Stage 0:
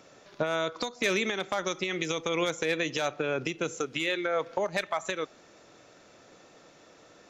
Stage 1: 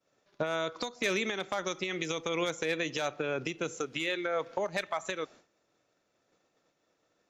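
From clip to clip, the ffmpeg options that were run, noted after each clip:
-af "agate=range=-33dB:threshold=-44dB:ratio=3:detection=peak,volume=-3dB"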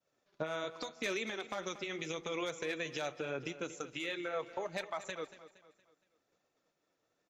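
-af "flanger=delay=1:depth=8:regen=-46:speed=0.78:shape=triangular,aecho=1:1:233|466|699|932:0.178|0.0747|0.0314|0.0132,volume=-2.5dB"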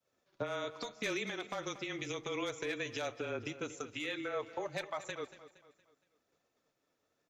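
-af "afreqshift=-23"

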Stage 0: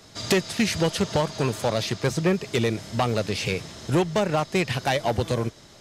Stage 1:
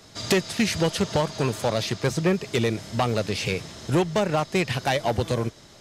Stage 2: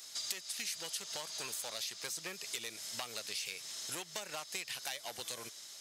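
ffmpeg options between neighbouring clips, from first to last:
-af anull
-af "aderivative,acompressor=threshold=-45dB:ratio=4,volume=6dB"

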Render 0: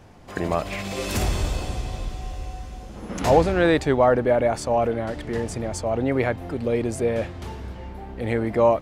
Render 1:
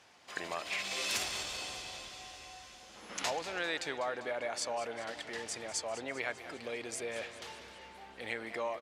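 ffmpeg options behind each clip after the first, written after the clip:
-af "acompressor=threshold=-21dB:ratio=4,bandpass=f=4.2k:t=q:w=0.64:csg=0,aecho=1:1:198|396|594|792|990|1188:0.2|0.118|0.0695|0.041|0.0242|0.0143"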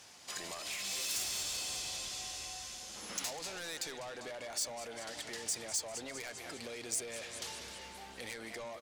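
-af "asoftclip=type=tanh:threshold=-36dB,acompressor=threshold=-44dB:ratio=6,bass=f=250:g=4,treble=f=4k:g=13,volume=1dB"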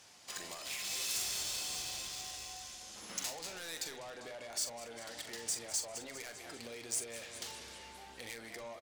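-filter_complex "[0:a]asplit=2[a][b];[b]acrusher=bits=5:mix=0:aa=0.000001,volume=-8dB[c];[a][c]amix=inputs=2:normalize=0,asplit=2[d][e];[e]adelay=43,volume=-9dB[f];[d][f]amix=inputs=2:normalize=0,volume=-3.5dB"

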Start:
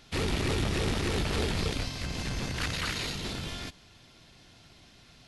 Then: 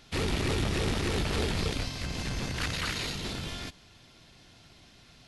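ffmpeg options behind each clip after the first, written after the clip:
-af anull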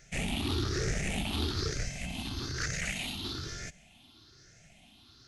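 -af "afftfilt=real='re*pow(10,15/40*sin(2*PI*(0.54*log(max(b,1)*sr/1024/100)/log(2)-(1.1)*(pts-256)/sr)))':imag='im*pow(10,15/40*sin(2*PI*(0.54*log(max(b,1)*sr/1024/100)/log(2)-(1.1)*(pts-256)/sr)))':win_size=1024:overlap=0.75,equalizer=f=500:t=o:w=0.33:g=-7,equalizer=f=1k:t=o:w=0.33:g=-8,equalizer=f=6.3k:t=o:w=0.33:g=5,volume=-5dB"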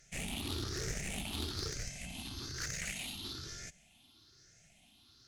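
-af "aemphasis=mode=production:type=cd,aeval=exprs='0.126*(cos(1*acos(clip(val(0)/0.126,-1,1)))-cos(1*PI/2))+0.0501*(cos(2*acos(clip(val(0)/0.126,-1,1)))-cos(2*PI/2))+0.00631*(cos(8*acos(clip(val(0)/0.126,-1,1)))-cos(8*PI/2))':c=same,volume=-8dB"

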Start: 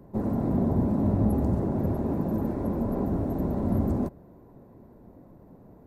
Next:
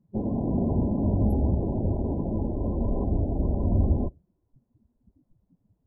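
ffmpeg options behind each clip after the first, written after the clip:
-af "afftdn=nr=28:nf=-34,asubboost=boost=5.5:cutoff=78"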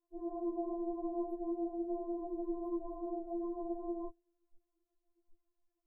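-filter_complex "[0:a]acrossover=split=170|260|440[a][b][c][d];[a]acompressor=threshold=-32dB:ratio=6[e];[e][b][c][d]amix=inputs=4:normalize=0,afftfilt=real='re*4*eq(mod(b,16),0)':imag='im*4*eq(mod(b,16),0)':win_size=2048:overlap=0.75,volume=-5dB"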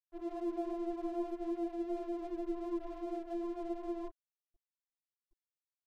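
-af "aeval=exprs='sgn(val(0))*max(abs(val(0))-0.00158,0)':c=same,volume=1dB"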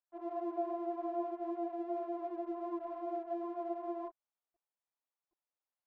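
-af "bandpass=f=820:t=q:w=1.5:csg=0,volume=7dB"

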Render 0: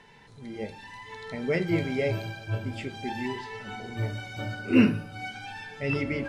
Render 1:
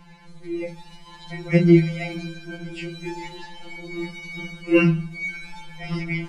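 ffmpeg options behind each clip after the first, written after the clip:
-af "lowshelf=f=160:g=10.5,afftfilt=real='re*2.83*eq(mod(b,8),0)':imag='im*2.83*eq(mod(b,8),0)':win_size=2048:overlap=0.75,volume=6dB"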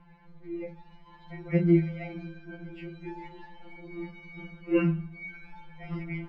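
-af "lowpass=1.9k,volume=-7.5dB"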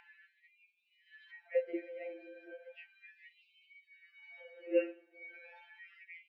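-filter_complex "[0:a]asplit=3[a][b][c];[a]bandpass=f=530:t=q:w=8,volume=0dB[d];[b]bandpass=f=1.84k:t=q:w=8,volume=-6dB[e];[c]bandpass=f=2.48k:t=q:w=8,volume=-9dB[f];[d][e][f]amix=inputs=3:normalize=0,acompressor=mode=upward:threshold=-48dB:ratio=2.5,afftfilt=real='re*gte(b*sr/1024,230*pow(2200/230,0.5+0.5*sin(2*PI*0.35*pts/sr)))':imag='im*gte(b*sr/1024,230*pow(2200/230,0.5+0.5*sin(2*PI*0.35*pts/sr)))':win_size=1024:overlap=0.75,volume=4dB"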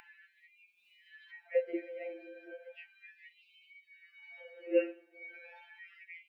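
-af "acompressor=mode=upward:threshold=-60dB:ratio=2.5,volume=2dB"

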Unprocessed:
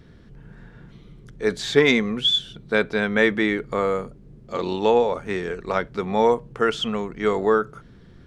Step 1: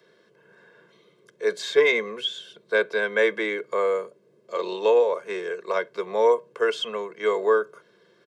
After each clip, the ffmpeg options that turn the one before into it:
-filter_complex "[0:a]highpass=f=260:w=0.5412,highpass=f=260:w=1.3066,aecho=1:1:1.9:0.98,acrossover=split=340|430|3000[a][b][c][d];[d]alimiter=limit=-20.5dB:level=0:latency=1:release=274[e];[a][b][c][e]amix=inputs=4:normalize=0,volume=-5dB"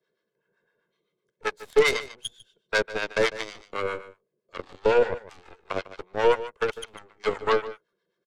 -filter_complex "[0:a]aeval=exprs='0.422*(cos(1*acos(clip(val(0)/0.422,-1,1)))-cos(1*PI/2))+0.0106*(cos(3*acos(clip(val(0)/0.422,-1,1)))-cos(3*PI/2))+0.0473*(cos(4*acos(clip(val(0)/0.422,-1,1)))-cos(4*PI/2))+0.075*(cos(5*acos(clip(val(0)/0.422,-1,1)))-cos(5*PI/2))+0.119*(cos(7*acos(clip(val(0)/0.422,-1,1)))-cos(7*PI/2))':c=same,aecho=1:1:150:0.178,acrossover=split=710[a][b];[a]aeval=exprs='val(0)*(1-0.7/2+0.7/2*cos(2*PI*7.8*n/s))':c=same[c];[b]aeval=exprs='val(0)*(1-0.7/2-0.7/2*cos(2*PI*7.8*n/s))':c=same[d];[c][d]amix=inputs=2:normalize=0"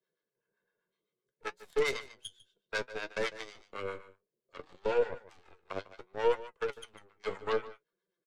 -af "flanger=delay=5:depth=6.4:regen=58:speed=0.62:shape=triangular,volume=-6dB"

